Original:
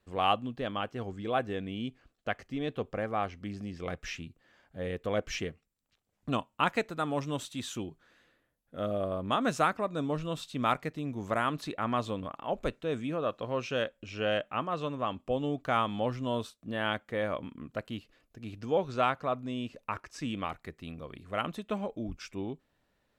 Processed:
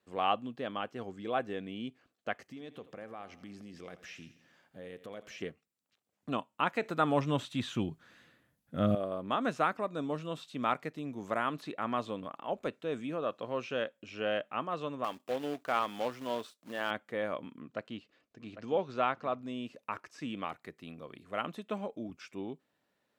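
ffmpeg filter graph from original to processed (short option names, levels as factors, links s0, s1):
-filter_complex "[0:a]asettb=1/sr,asplit=3[s0][s1][s2];[s0]atrim=end=2.404[s3];[s1]atrim=start=2.4:end=5.42,asetpts=PTS-STARTPTS,afade=t=in:d=0.004:c=qsin,afade=t=out:st=3.016:d=0.004:c=qsin,highshelf=f=7200:g=6.5,acompressor=threshold=0.01:ratio=4:attack=3.2:release=140:knee=1:detection=peak,aecho=1:1:84|168|252|336|420:0.168|0.0923|0.0508|0.0279|0.0154,atrim=end_sample=133182[s4];[s2]atrim=start=5.416[s5];[s3][s4]acrossfade=d=0.004:c1=hsin:c2=qsin[s6];[s6][s5]acrossfade=d=0.004:c1=qsin:c2=hsin,asettb=1/sr,asplit=3[s7][s8][s9];[s7]atrim=end=6.824[s10];[s8]atrim=start=6.82:end=8.95,asetpts=PTS-STARTPTS,afade=t=in:d=0.004:c=qsin,afade=t=out:st=2.126:d=0.004:c=qsin,asubboost=boost=10.5:cutoff=170,acontrast=81[s11];[s9]atrim=start=8.946[s12];[s10][s11]acrossfade=d=0.004:c1=hsin:c2=qsin[s13];[s13][s12]acrossfade=d=0.004:c1=qsin:c2=hsin,asettb=1/sr,asplit=3[s14][s15][s16];[s14]atrim=end=15.044[s17];[s15]atrim=start=15.04:end=16.91,asetpts=PTS-STARTPTS,afade=t=in:d=0.004:c=qsin,afade=t=out:st=1.866:d=0.004:c=qsin,bass=f=250:g=-9,treble=f=4000:g=3,acrusher=bits=2:mode=log:mix=0:aa=0.000001[s18];[s16]atrim=start=16.906[s19];[s17][s18]acrossfade=d=0.004:c1=hsin:c2=qsin[s20];[s20][s19]acrossfade=d=0.004:c1=qsin:c2=hsin,asettb=1/sr,asplit=3[s21][s22][s23];[s21]atrim=end=17.604[s24];[s22]atrim=start=17.6:end=19.42,asetpts=PTS-STARTPTS,afade=t=in:d=0.004:c=qsin,afade=t=out:st=1.816:d=0.004:c=qsin,lowpass=6100,aecho=1:1:801:0.251,atrim=end_sample=80262[s25];[s23]atrim=start=19.416[s26];[s24][s25]acrossfade=d=0.004:c1=hsin:c2=qsin[s27];[s27][s26]acrossfade=d=0.004:c1=qsin:c2=hsin,highpass=170,acrossover=split=3600[s28][s29];[s29]acompressor=threshold=0.00251:ratio=4:attack=1:release=60[s30];[s28][s30]amix=inputs=2:normalize=0,volume=0.75"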